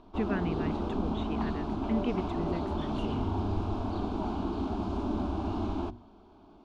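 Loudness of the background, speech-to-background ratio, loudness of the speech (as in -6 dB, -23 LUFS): -33.5 LUFS, -4.0 dB, -37.5 LUFS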